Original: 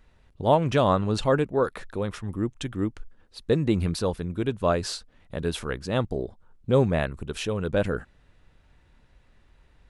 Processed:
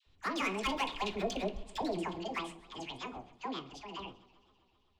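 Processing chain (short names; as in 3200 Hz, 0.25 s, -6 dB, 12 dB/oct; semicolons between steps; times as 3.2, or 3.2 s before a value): Doppler pass-by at 2.4, 7 m/s, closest 4.6 m; LPF 3400 Hz 24 dB/oct; band shelf 1600 Hz +8.5 dB 1.1 oct; de-hum 181.4 Hz, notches 39; in parallel at 0 dB: compressor, threshold -37 dBFS, peak gain reduction 15 dB; on the sum: hard clip -21.5 dBFS, distortion -14 dB; dispersion lows, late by 0.129 s, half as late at 410 Hz; reverb RT60 0.60 s, pre-delay 6 ms, DRR 8.5 dB; wide varispeed 1.98×; warbling echo 0.13 s, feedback 74%, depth 134 cents, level -22 dB; gain -7 dB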